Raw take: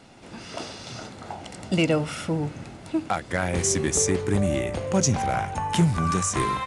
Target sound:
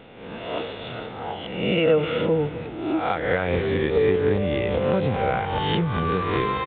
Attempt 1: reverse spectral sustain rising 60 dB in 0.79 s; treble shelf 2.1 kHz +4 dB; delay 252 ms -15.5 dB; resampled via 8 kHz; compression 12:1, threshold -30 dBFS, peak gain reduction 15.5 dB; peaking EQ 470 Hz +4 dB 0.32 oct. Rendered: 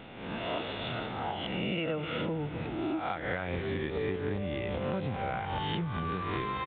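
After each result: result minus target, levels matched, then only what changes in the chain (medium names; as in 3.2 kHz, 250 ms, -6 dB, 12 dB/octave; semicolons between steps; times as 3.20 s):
compression: peak gain reduction +9.5 dB; 500 Hz band -3.0 dB
change: compression 12:1, threshold -19.5 dBFS, peak gain reduction 6 dB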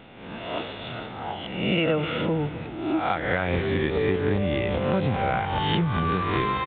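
500 Hz band -2.5 dB
change: peaking EQ 470 Hz +12.5 dB 0.32 oct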